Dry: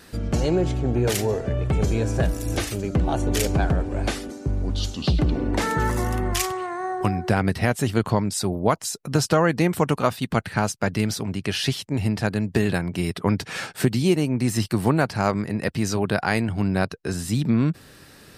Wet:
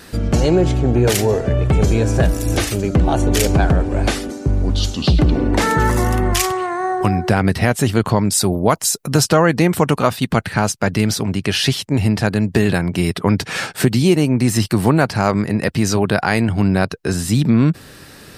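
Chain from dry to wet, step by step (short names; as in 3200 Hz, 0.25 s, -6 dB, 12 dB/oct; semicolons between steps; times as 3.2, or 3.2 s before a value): 8.24–9.24 high shelf 8400 Hz +8.5 dB; in parallel at -1.5 dB: limiter -15 dBFS, peak gain reduction 9 dB; on the sum: gain +2.5 dB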